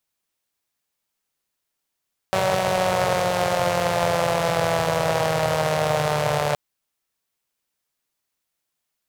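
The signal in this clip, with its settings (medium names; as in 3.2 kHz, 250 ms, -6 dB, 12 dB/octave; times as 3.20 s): four-cylinder engine model, changing speed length 4.22 s, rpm 5700, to 4400, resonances 130/580 Hz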